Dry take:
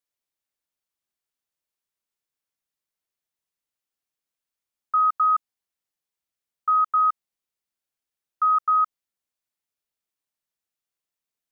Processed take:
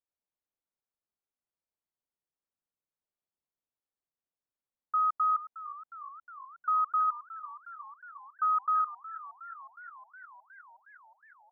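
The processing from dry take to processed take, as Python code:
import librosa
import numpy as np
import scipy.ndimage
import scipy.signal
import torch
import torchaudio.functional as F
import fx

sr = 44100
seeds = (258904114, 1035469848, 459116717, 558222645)

y = scipy.signal.sosfilt(scipy.signal.butter(2, 1100.0, 'lowpass', fs=sr, output='sos'), x)
y = fx.echo_warbled(y, sr, ms=362, feedback_pct=73, rate_hz=2.8, cents=88, wet_db=-16)
y = y * librosa.db_to_amplitude(-3.0)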